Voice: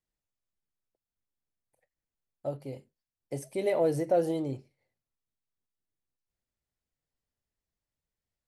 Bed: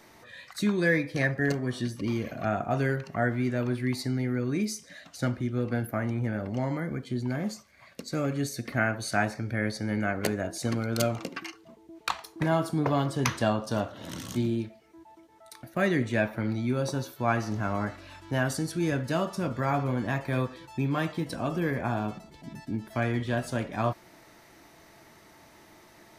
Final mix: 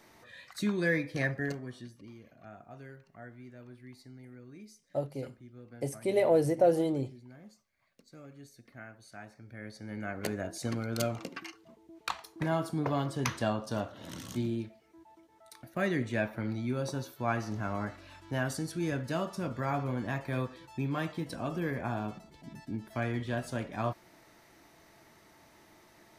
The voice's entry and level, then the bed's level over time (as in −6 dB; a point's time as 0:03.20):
2.50 s, +1.5 dB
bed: 0:01.31 −4.5 dB
0:02.14 −21.5 dB
0:09.21 −21.5 dB
0:10.36 −5 dB